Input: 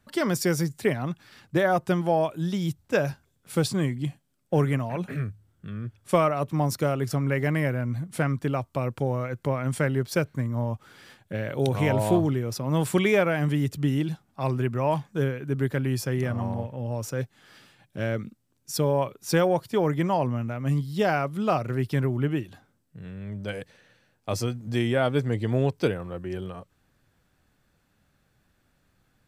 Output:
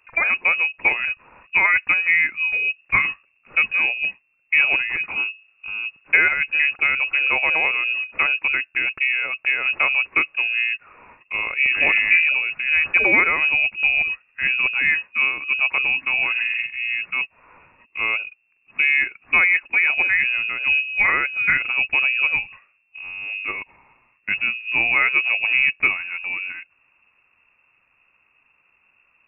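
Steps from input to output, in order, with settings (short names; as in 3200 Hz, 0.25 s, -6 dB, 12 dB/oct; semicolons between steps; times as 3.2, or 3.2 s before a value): inverted band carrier 2700 Hz; gain +5 dB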